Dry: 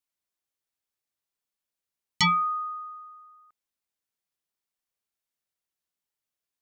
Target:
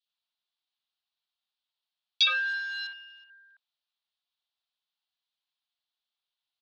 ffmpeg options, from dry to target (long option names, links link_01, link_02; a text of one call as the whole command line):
ffmpeg -i in.wav -filter_complex "[0:a]asplit=2[link_01][link_02];[link_02]alimiter=level_in=0.5dB:limit=-24dB:level=0:latency=1:release=434,volume=-0.5dB,volume=1dB[link_03];[link_01][link_03]amix=inputs=2:normalize=0,asettb=1/sr,asplit=3[link_04][link_05][link_06];[link_04]atrim=end=2.254[link_07];[link_05]atrim=start=2.25:end=3.24,asetpts=PTS-STARTPTS,afade=type=in:duration=0.004:curve=qsin,afade=type=out:start_time=0.986:duration=0.004:curve=qsin,acrusher=bits=6:dc=4:mix=0:aa=0.000001[link_08];[link_06]atrim=start=3.236[link_09];[link_07][link_08]acrossfade=duration=0.004:curve1=hsin:curve2=qsin[link_10];[link_10][link_09]acrossfade=duration=0.004:curve1=qsin:curve2=hsin,highpass=frequency=300:width_type=q:width=0.5412,highpass=frequency=300:width_type=q:width=1.307,lowpass=frequency=3500:width_type=q:width=0.5176,lowpass=frequency=3500:width_type=q:width=0.7071,lowpass=frequency=3500:width_type=q:width=1.932,afreqshift=350,acrossover=split=2600[link_11][link_12];[link_11]adelay=60[link_13];[link_13][link_12]amix=inputs=2:normalize=0,aexciter=amount=8.3:drive=1:freq=3000,volume=-7dB" out.wav